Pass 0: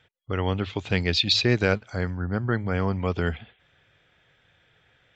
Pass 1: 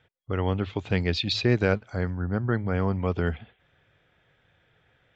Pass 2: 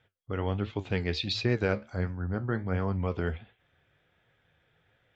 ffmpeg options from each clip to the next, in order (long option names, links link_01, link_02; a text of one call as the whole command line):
ffmpeg -i in.wav -af "highshelf=frequency=2200:gain=-8.5" out.wav
ffmpeg -i in.wav -af "flanger=delay=8.4:depth=6.5:regen=69:speed=1.4:shape=triangular" out.wav